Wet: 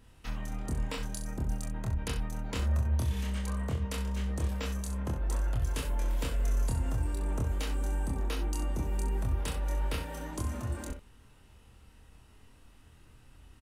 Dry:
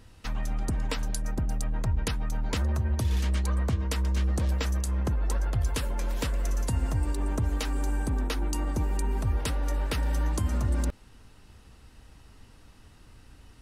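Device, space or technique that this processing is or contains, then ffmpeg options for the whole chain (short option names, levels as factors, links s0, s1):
exciter from parts: -filter_complex "[0:a]asplit=2[s0][s1];[s1]highpass=f=3300:w=0.5412,highpass=f=3300:w=1.3066,asoftclip=type=tanh:threshold=0.0141,highpass=f=2100:w=0.5412,highpass=f=2100:w=1.3066,volume=0.398[s2];[s0][s2]amix=inputs=2:normalize=0,asplit=2[s3][s4];[s4]adelay=26,volume=0.75[s5];[s3][s5]amix=inputs=2:normalize=0,aecho=1:1:41|65:0.251|0.335,volume=0.447"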